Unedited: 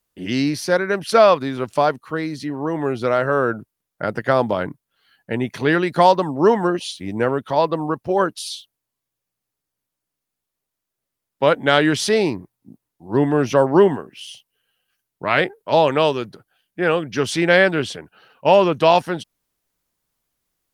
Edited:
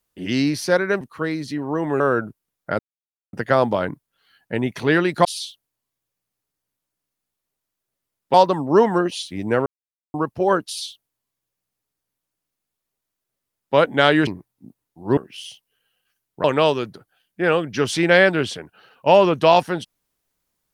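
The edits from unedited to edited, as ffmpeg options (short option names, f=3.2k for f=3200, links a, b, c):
-filter_complex "[0:a]asplit=11[a][b][c][d][e][f][g][h][i][j][k];[a]atrim=end=1.012[l];[b]atrim=start=1.928:end=2.922[m];[c]atrim=start=3.318:end=4.11,asetpts=PTS-STARTPTS,afade=t=out:st=0.788:d=0.004:c=hsin,apad=pad_dur=0.54[n];[d]atrim=start=4.11:end=6.032,asetpts=PTS-STARTPTS,afade=t=in:d=0.004:c=hsin[o];[e]atrim=start=8.348:end=11.442[p];[f]atrim=start=6.028:end=7.35,asetpts=PTS-STARTPTS,afade=t=out:st=1.318:d=0.004:c=hsin[q];[g]atrim=start=7.35:end=7.83,asetpts=PTS-STARTPTS,volume=0[r];[h]atrim=start=7.83:end=11.962,asetpts=PTS-STARTPTS,afade=t=in:d=0.004:c=hsin[s];[i]atrim=start=12.308:end=13.212[t];[j]atrim=start=13.998:end=15.272[u];[k]atrim=start=15.828[v];[l][m]acrossfade=d=0.004:c1=hsin:c2=hsin[w];[n][o]concat=n=2:v=0:a=1[x];[w][x]acrossfade=d=0.004:c1=hsin:c2=hsin[y];[y][p]acrossfade=d=0.004:c1=hsin:c2=hsin[z];[q][r][s]concat=n=3:v=0:a=1[aa];[z][aa]acrossfade=d=0.004:c1=hsin:c2=hsin[ab];[ab][t]acrossfade=d=0.004:c1=hsin:c2=hsin[ac];[ac][u]acrossfade=d=0.004:c1=hsin:c2=hsin[ad];[ad][v]acrossfade=d=0.004:c1=hsin:c2=hsin"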